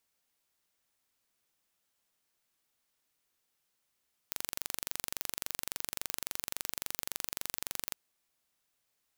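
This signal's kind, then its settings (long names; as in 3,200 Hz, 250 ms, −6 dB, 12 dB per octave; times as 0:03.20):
impulse train 23.6 per second, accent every 0, −7.5 dBFS 3.64 s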